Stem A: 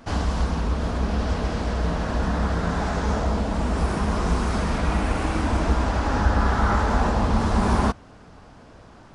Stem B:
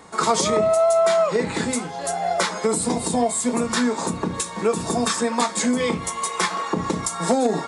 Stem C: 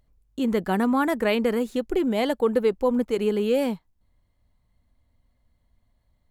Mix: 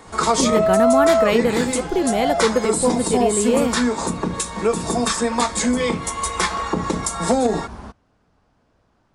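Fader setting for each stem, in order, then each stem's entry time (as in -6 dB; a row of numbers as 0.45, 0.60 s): -16.0, +1.5, +3.0 dB; 0.00, 0.00, 0.00 s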